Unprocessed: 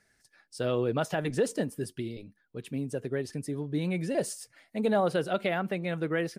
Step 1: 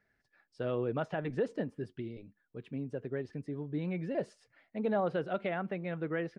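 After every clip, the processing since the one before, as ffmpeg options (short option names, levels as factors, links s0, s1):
-af "lowpass=2400,volume=0.562"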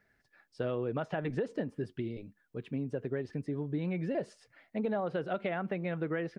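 -af "acompressor=threshold=0.02:ratio=6,volume=1.68"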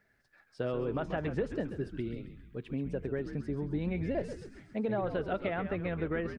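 -filter_complex "[0:a]asplit=7[s0][s1][s2][s3][s4][s5][s6];[s1]adelay=134,afreqshift=-95,volume=0.355[s7];[s2]adelay=268,afreqshift=-190,volume=0.182[s8];[s3]adelay=402,afreqshift=-285,volume=0.0923[s9];[s4]adelay=536,afreqshift=-380,volume=0.0473[s10];[s5]adelay=670,afreqshift=-475,volume=0.024[s11];[s6]adelay=804,afreqshift=-570,volume=0.0123[s12];[s0][s7][s8][s9][s10][s11][s12]amix=inputs=7:normalize=0"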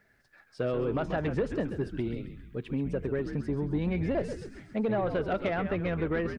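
-af "asoftclip=type=tanh:threshold=0.0562,volume=1.78"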